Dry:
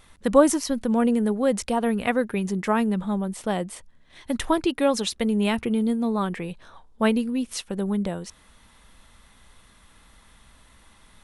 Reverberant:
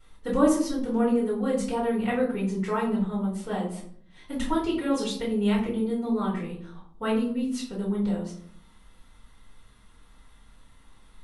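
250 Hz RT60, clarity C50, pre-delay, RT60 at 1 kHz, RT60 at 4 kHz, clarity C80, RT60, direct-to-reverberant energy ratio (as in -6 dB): 0.85 s, 5.5 dB, 3 ms, 0.55 s, 0.35 s, 9.5 dB, 0.60 s, -9.5 dB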